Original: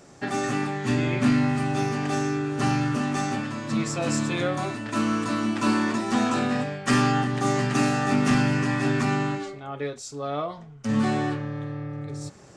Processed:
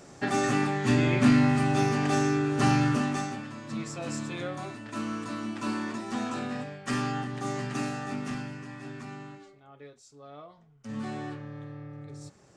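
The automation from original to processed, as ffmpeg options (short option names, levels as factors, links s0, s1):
-af "volume=2.82,afade=t=out:st=2.89:d=0.46:silence=0.334965,afade=t=out:st=7.76:d=0.82:silence=0.375837,afade=t=in:st=10.49:d=1.08:silence=0.375837"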